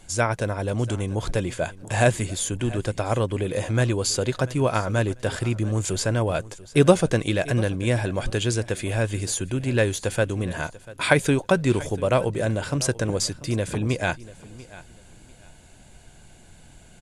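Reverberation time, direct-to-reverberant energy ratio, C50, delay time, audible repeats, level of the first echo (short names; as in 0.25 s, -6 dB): none, none, none, 0.691 s, 2, -19.0 dB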